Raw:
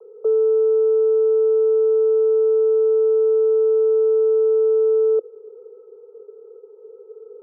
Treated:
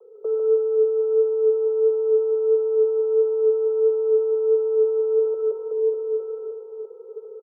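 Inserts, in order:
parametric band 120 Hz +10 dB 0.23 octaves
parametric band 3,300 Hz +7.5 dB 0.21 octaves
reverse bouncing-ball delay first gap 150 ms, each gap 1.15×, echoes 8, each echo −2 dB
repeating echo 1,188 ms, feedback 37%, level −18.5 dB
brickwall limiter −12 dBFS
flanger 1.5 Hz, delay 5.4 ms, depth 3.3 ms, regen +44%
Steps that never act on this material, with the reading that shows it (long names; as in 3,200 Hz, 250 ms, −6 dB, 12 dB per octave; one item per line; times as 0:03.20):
parametric band 120 Hz: nothing at its input below 430 Hz
parametric band 3,300 Hz: nothing at its input above 450 Hz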